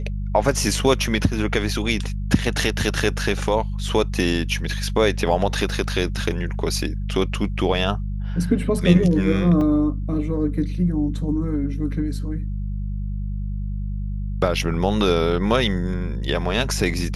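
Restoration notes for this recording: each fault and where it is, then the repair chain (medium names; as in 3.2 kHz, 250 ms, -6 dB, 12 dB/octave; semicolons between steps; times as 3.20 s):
hum 50 Hz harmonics 4 -26 dBFS
9.61 s: dropout 3.3 ms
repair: de-hum 50 Hz, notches 4; interpolate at 9.61 s, 3.3 ms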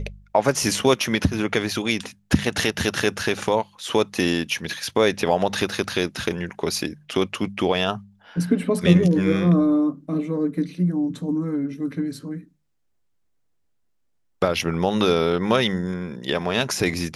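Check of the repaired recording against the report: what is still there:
nothing left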